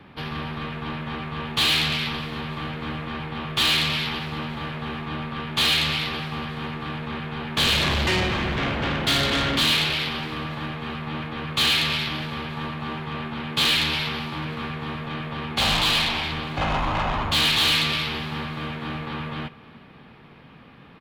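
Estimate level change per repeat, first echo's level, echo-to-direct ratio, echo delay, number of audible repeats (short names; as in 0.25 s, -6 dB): -4.5 dB, -23.0 dB, -21.0 dB, 0.306 s, 3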